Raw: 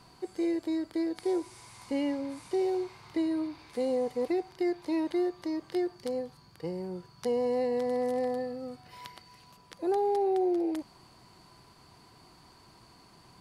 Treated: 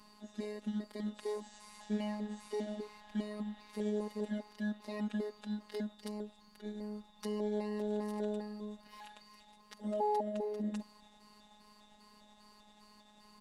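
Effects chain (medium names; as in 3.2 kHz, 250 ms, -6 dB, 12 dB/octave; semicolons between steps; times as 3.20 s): pitch shift switched off and on -4 st, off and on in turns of 200 ms; robot voice 210 Hz; comb 3.7 ms, depth 41%; trim -2.5 dB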